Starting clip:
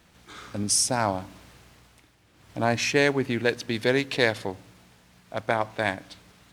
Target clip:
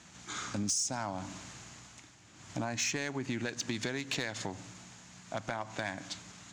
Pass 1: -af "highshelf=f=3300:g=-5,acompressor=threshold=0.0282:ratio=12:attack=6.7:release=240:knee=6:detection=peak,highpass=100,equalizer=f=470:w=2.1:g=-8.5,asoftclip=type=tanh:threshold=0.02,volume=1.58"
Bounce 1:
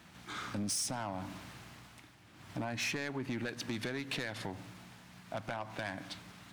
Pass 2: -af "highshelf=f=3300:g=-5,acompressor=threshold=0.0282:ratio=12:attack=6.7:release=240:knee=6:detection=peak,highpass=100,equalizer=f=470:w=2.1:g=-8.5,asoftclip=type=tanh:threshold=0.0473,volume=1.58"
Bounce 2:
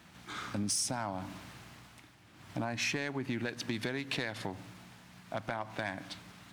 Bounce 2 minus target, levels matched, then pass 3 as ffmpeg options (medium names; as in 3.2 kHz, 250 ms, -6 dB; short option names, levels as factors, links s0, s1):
8 kHz band -3.0 dB
-af "lowpass=f=6900:t=q:w=5.9,highshelf=f=3300:g=-5,acompressor=threshold=0.0282:ratio=12:attack=6.7:release=240:knee=6:detection=peak,highpass=100,equalizer=f=470:w=2.1:g=-8.5,asoftclip=type=tanh:threshold=0.0473,volume=1.58"